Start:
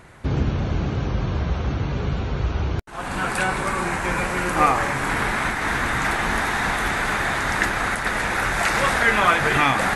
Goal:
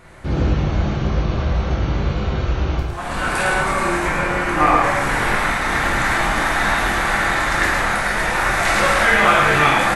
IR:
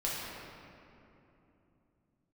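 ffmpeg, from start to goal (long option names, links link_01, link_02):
-filter_complex "[0:a]asettb=1/sr,asplit=3[link_01][link_02][link_03];[link_01]atrim=end=4.074[link_04];[link_02]atrim=start=4.07:end=4.84,asetpts=PTS-STARTPTS,afade=type=in:duration=0.004:curve=qsin,afade=type=out:start_time=0.766:duration=0.004:curve=qsin,aemphasis=mode=reproduction:type=cd[link_05];[link_03]atrim=start=4.836[link_06];[link_04][link_05]acrossfade=duration=0.004:curve1=hsin:curve2=qsin[link_07];[link_07][link_06]acrossfade=duration=0.004:curve1=qsin:curve2=hsin,aecho=1:1:109:0.668[link_08];[1:a]atrim=start_sample=2205,atrim=end_sample=3528[link_09];[link_08][link_09]afir=irnorm=-1:irlink=0"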